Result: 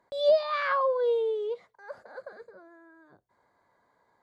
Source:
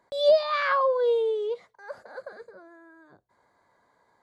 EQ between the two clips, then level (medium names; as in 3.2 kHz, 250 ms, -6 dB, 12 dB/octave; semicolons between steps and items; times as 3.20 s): treble shelf 4.3 kHz -5.5 dB; -2.5 dB